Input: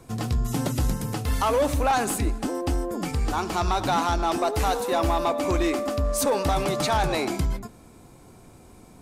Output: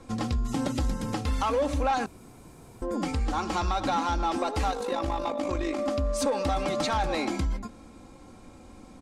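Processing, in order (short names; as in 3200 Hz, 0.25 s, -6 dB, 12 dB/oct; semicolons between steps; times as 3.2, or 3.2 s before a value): LPF 6800 Hz 12 dB/oct; comb 3.7 ms, depth 54%; compressor 2.5:1, threshold -26 dBFS, peak gain reduction 7.5 dB; 2.06–2.82 room tone; 4.71–5.79 AM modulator 51 Hz, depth 40%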